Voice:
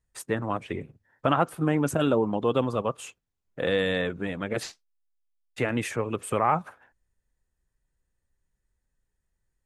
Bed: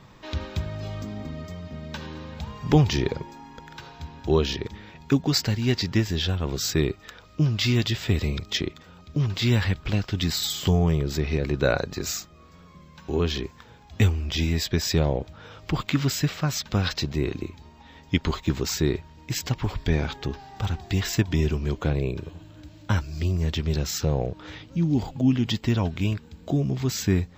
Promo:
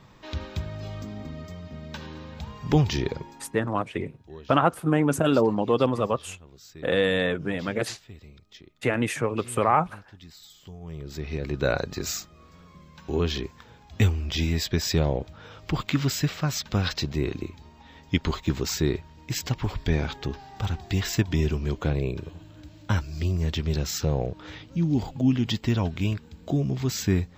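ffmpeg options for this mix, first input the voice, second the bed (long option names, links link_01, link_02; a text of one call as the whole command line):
ffmpeg -i stem1.wav -i stem2.wav -filter_complex "[0:a]adelay=3250,volume=2.5dB[link_01];[1:a]volume=19dB,afade=type=out:start_time=3.25:duration=0.54:silence=0.1,afade=type=in:start_time=10.8:duration=1.05:silence=0.0841395[link_02];[link_01][link_02]amix=inputs=2:normalize=0" out.wav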